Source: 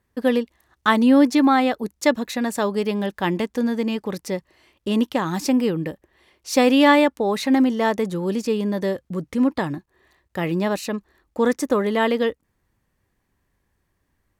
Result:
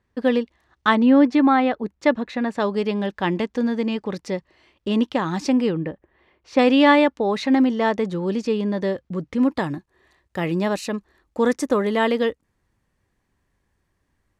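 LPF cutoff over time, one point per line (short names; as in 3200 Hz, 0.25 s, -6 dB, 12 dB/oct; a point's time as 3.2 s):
5400 Hz
from 0.95 s 2800 Hz
from 2.6 s 5300 Hz
from 5.77 s 2200 Hz
from 6.59 s 5000 Hz
from 9.43 s 10000 Hz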